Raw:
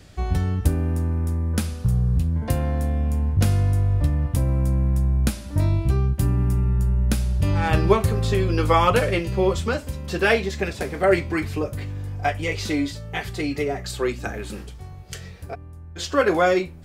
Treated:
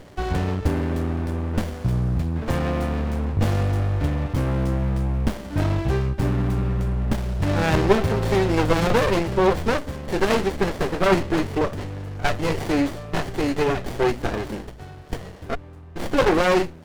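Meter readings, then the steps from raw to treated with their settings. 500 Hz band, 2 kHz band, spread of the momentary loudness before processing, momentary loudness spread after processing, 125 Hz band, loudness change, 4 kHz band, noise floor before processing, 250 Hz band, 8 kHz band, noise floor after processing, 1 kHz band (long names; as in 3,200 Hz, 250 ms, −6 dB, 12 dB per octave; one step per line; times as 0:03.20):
+1.0 dB, −0.5 dB, 12 LU, 10 LU, −2.0 dB, −0.5 dB, +0.5 dB, −39 dBFS, +2.5 dB, −2.5 dB, −41 dBFS, +0.5 dB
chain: mid-hump overdrive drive 18 dB, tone 4,900 Hz, clips at −5.5 dBFS
windowed peak hold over 33 samples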